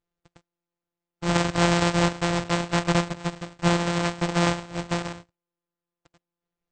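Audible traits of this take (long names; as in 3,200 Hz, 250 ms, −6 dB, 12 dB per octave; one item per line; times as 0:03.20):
a buzz of ramps at a fixed pitch in blocks of 256 samples
AAC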